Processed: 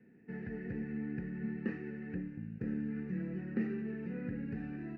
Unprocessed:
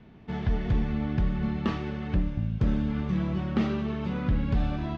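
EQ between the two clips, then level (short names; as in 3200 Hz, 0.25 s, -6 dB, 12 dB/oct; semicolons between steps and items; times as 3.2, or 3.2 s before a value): vowel filter e; bell 220 Hz +12.5 dB 2.3 oct; fixed phaser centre 1400 Hz, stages 4; +4.0 dB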